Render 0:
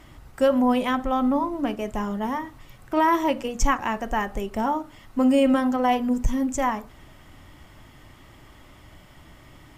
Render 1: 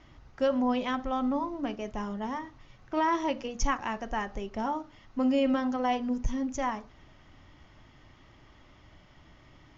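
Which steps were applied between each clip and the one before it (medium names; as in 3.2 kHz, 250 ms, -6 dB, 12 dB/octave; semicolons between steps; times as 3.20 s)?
steep low-pass 6.7 kHz 96 dB/octave; dynamic bell 5 kHz, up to +4 dB, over -47 dBFS, Q 1.1; trim -7 dB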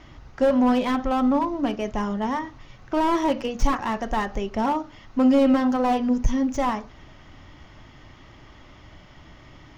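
slew-rate limiter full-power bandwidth 34 Hz; trim +8.5 dB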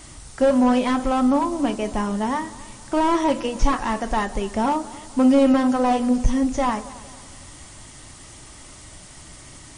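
multi-head delay 91 ms, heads second and third, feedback 49%, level -21 dB; added noise violet -39 dBFS; trim +2.5 dB; MP3 40 kbps 22.05 kHz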